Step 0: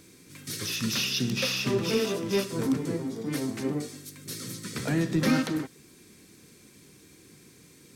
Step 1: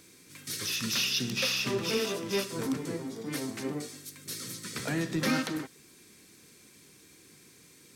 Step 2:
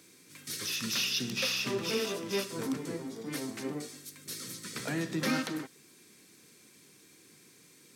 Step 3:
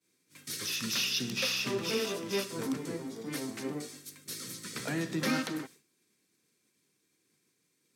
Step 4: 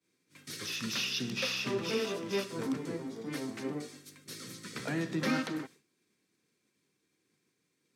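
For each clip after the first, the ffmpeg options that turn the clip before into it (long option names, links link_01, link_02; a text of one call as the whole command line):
ffmpeg -i in.wav -af "lowshelf=frequency=490:gain=-7" out.wav
ffmpeg -i in.wav -af "highpass=120,volume=-2dB" out.wav
ffmpeg -i in.wav -af "agate=range=-33dB:threshold=-47dB:ratio=3:detection=peak" out.wav
ffmpeg -i in.wav -af "lowpass=frequency=3900:poles=1" out.wav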